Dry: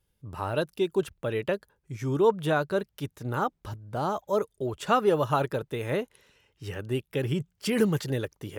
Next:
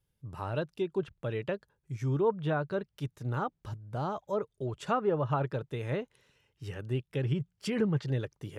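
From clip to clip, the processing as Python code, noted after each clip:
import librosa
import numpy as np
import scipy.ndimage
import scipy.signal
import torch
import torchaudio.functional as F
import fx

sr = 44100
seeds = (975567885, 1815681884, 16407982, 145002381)

y = fx.env_lowpass_down(x, sr, base_hz=1800.0, full_db=-19.5)
y = fx.peak_eq(y, sr, hz=130.0, db=7.0, octaves=0.73)
y = F.gain(torch.from_numpy(y), -6.0).numpy()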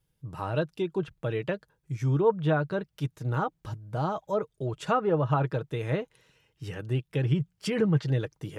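y = x + 0.34 * np.pad(x, (int(6.3 * sr / 1000.0), 0))[:len(x)]
y = F.gain(torch.from_numpy(y), 3.5).numpy()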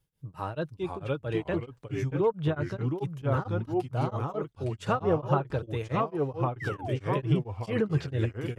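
y = fx.echo_pitch(x, sr, ms=452, semitones=-2, count=2, db_per_echo=-3.0)
y = fx.spec_paint(y, sr, seeds[0], shape='fall', start_s=6.6, length_s=0.38, low_hz=440.0, high_hz=2100.0, level_db=-36.0)
y = y * np.abs(np.cos(np.pi * 4.5 * np.arange(len(y)) / sr))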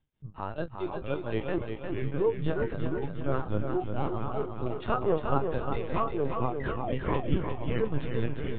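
y = fx.doubler(x, sr, ms=29.0, db=-9.5)
y = fx.lpc_vocoder(y, sr, seeds[1], excitation='pitch_kept', order=16)
y = fx.echo_feedback(y, sr, ms=354, feedback_pct=47, wet_db=-6.0)
y = F.gain(torch.from_numpy(y), -1.5).numpy()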